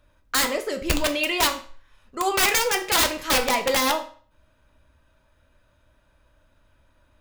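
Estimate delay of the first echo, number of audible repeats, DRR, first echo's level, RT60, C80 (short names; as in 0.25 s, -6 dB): none, none, 5.0 dB, none, 0.45 s, 16.5 dB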